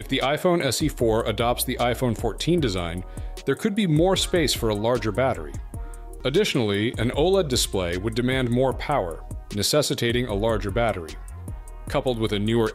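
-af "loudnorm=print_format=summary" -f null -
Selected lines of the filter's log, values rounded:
Input Integrated:    -23.5 LUFS
Input True Peak:      -9.4 dBTP
Input LRA:             2.2 LU
Input Threshold:     -34.1 LUFS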